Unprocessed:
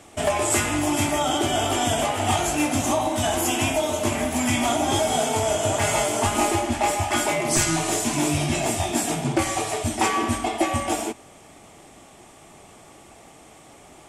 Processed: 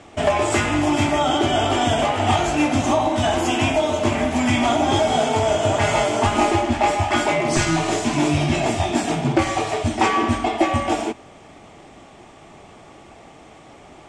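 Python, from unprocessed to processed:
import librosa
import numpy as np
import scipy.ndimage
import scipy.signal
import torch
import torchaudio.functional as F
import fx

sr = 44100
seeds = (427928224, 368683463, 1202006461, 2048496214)

y = fx.air_absorb(x, sr, metres=110.0)
y = F.gain(torch.from_numpy(y), 4.5).numpy()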